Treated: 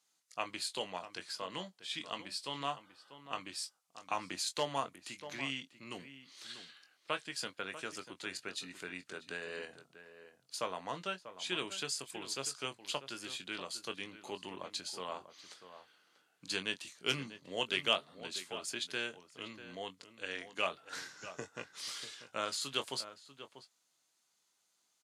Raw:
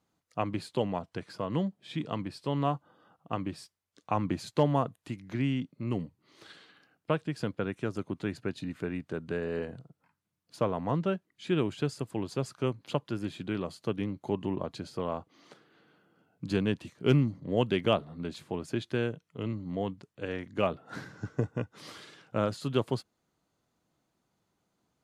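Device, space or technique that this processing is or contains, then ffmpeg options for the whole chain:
piezo pickup straight into a mixer: -filter_complex "[0:a]lowpass=8700,aderivative,asplit=2[link_01][link_02];[link_02]adelay=22,volume=-9.5dB[link_03];[link_01][link_03]amix=inputs=2:normalize=0,asplit=2[link_04][link_05];[link_05]adelay=641.4,volume=-12dB,highshelf=frequency=4000:gain=-14.4[link_06];[link_04][link_06]amix=inputs=2:normalize=0,volume=11.5dB"

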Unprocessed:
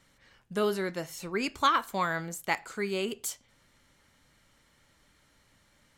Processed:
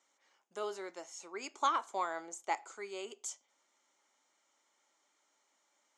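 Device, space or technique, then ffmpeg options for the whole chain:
phone speaker on a table: -filter_complex "[0:a]highpass=frequency=360:width=0.5412,highpass=frequency=360:width=1.3066,equalizer=frequency=480:width_type=q:width=4:gain=-7,equalizer=frequency=830:width_type=q:width=4:gain=4,equalizer=frequency=1700:width_type=q:width=4:gain=-8,equalizer=frequency=2700:width_type=q:width=4:gain=-5,equalizer=frequency=4200:width_type=q:width=4:gain=-6,equalizer=frequency=6700:width_type=q:width=4:gain=8,lowpass=frequency=8000:width=0.5412,lowpass=frequency=8000:width=1.3066,asettb=1/sr,asplit=3[link_01][link_02][link_03];[link_01]atrim=end=1.544[link_04];[link_02]atrim=start=1.54:end=2.72,asetpts=PTS-STARTPTS,afade=type=in:duration=0.004:curve=qsin,afade=type=out:start_time=1.176:duration=0.004:curve=qsin,equalizer=frequency=380:width_type=o:width=2.2:gain=5.5[link_05];[link_03]atrim=start=2.716[link_06];[link_04][link_05]acrossfade=duration=0.004:curve1=hsin:curve2=qsin[link_07];[link_07][link_06]acrossfade=duration=0.004:curve1=qsin:curve2=hsin,volume=-7.5dB"

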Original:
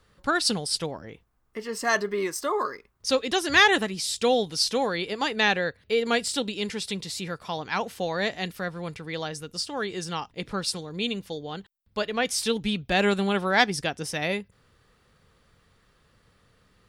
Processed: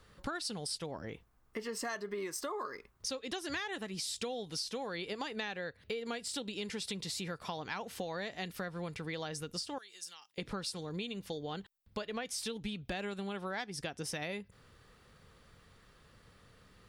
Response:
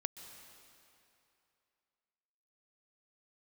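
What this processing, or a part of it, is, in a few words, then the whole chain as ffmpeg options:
serial compression, peaks first: -filter_complex "[0:a]acompressor=threshold=-31dB:ratio=6,acompressor=threshold=-41dB:ratio=2,asettb=1/sr,asplit=3[link_01][link_02][link_03];[link_01]atrim=end=9.784[link_04];[link_02]atrim=start=9.78:end=10.38,asetpts=PTS-STARTPTS,afade=type=in:duration=0.004:curve=qsin,afade=type=out:start_time=0.596:duration=0.004:curve=qsin,aderivative[link_05];[link_03]atrim=start=10.376[link_06];[link_04][link_05]acrossfade=duration=0.004:curve1=hsin:curve2=qsin[link_07];[link_07][link_06]acrossfade=duration=0.004:curve1=qsin:curve2=hsin,volume=1dB"

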